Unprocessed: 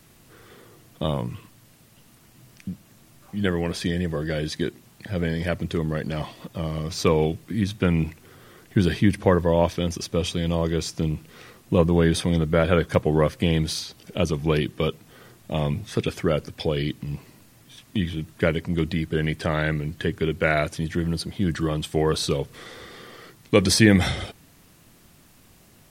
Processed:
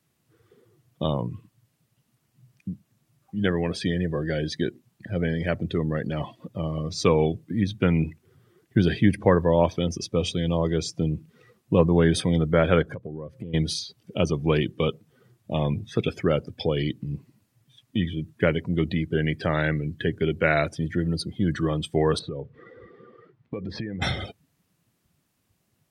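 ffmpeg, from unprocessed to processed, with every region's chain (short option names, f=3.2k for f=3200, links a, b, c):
-filter_complex "[0:a]asettb=1/sr,asplit=3[a][b][c];[a]atrim=end=12.824[d];[b]atrim=start=12.82:end=13.54,asetpts=PTS-STARTPTS,afade=t=in:d=0.004:c=qsin,afade=t=out:st=0.716:d=0.004:c=qsin,tiltshelf=f=1.1k:g=3,acompressor=threshold=-31dB:ratio=8:attack=3.2:release=140:knee=1:detection=peak[e];[c]atrim=start=13.536[f];[d][e]acrossfade=d=0.004:c1=hsin:c2=qsin[g];[g][f]acrossfade=d=0.004:c1=qsin:c2=hsin,asettb=1/sr,asplit=3[h][i][j];[h]atrim=end=22.194[k];[i]atrim=start=22.19:end=24.02,asetpts=PTS-STARTPTS,afade=t=in:d=0.004:c=qsin,afade=t=out:st=1.826:d=0.004:c=qsin,lowpass=2.1k,acompressor=threshold=-27dB:ratio=16:attack=3.2:release=140:knee=1:detection=peak[l];[j]atrim=start=24.016[m];[k][l]acrossfade=d=0.004:c1=hsin:c2=qsin[n];[n][m]acrossfade=d=0.004:c1=qsin:c2=hsin,afftdn=nr=18:nf=-37,highpass=70"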